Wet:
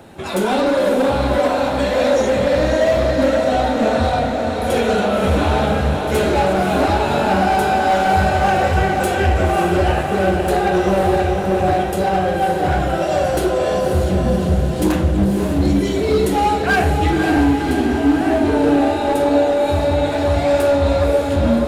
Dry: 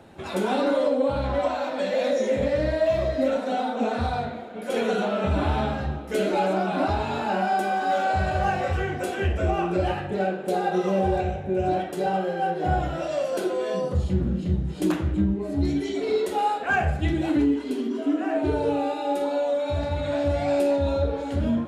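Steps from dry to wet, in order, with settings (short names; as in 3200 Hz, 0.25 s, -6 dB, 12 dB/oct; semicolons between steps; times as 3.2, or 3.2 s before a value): high shelf 9100 Hz +9 dB; hard clip -20 dBFS, distortion -15 dB; diffused feedback echo 0.557 s, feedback 63%, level -5 dB; gain +7.5 dB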